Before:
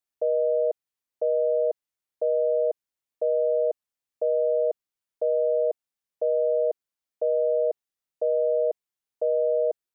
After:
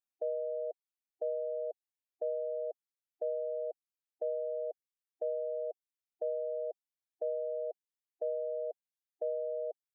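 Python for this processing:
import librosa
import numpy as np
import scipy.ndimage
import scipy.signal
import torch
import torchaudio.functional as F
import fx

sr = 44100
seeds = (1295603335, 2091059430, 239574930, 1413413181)

y = fx.dereverb_blind(x, sr, rt60_s=0.91)
y = fx.spec_gate(y, sr, threshold_db=-20, keep='strong')
y = fx.dynamic_eq(y, sr, hz=340.0, q=1.6, threshold_db=-42.0, ratio=4.0, max_db=-6)
y = y * 10.0 ** (-8.0 / 20.0)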